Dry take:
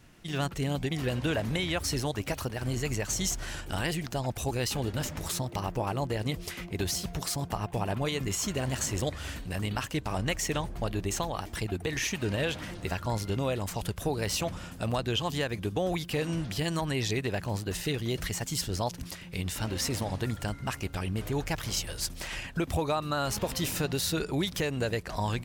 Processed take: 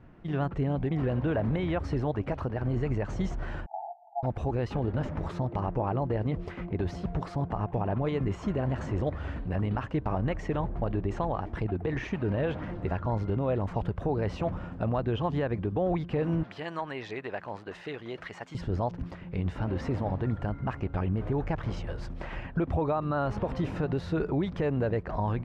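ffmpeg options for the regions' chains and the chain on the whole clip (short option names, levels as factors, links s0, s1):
-filter_complex "[0:a]asettb=1/sr,asplit=3[s0][s1][s2];[s0]atrim=end=3.664[s3];[s1]atrim=start=3.66:end=4.23,asetpts=PTS-STARTPTS,afade=t=in:d=0.004:c=qsin,afade=t=out:st=0.566:d=0.004:c=qsin,asuperpass=centerf=770:order=12:qfactor=3.4,asplit=2[s4][s5];[s5]adelay=17,volume=0.398[s6];[s4][s6]amix=inputs=2:normalize=0,atrim=end_sample=25137[s7];[s2]atrim=start=4.226[s8];[s3][s7]acrossfade=d=0.004:c1=hsin:c2=qsin[s9];[s9][s8]acrossfade=d=0.004:c1=qsin:c2=hsin,asettb=1/sr,asplit=3[s10][s11][s12];[s10]atrim=end=16.434[s13];[s11]atrim=start=16.43:end=18.55,asetpts=PTS-STARTPTS,afade=t=in:d=0.004:c=qsin,afade=t=out:st=2.116:d=0.004:c=qsin,bandpass=f=2000:t=q:w=0.52,aemphasis=mode=production:type=50fm[s14];[s12]atrim=start=18.546[s15];[s13][s14]acrossfade=d=0.004:c1=hsin:c2=qsin[s16];[s16][s15]acrossfade=d=0.004:c1=qsin:c2=hsin,lowpass=1200,alimiter=limit=0.0631:level=0:latency=1,volume=1.68"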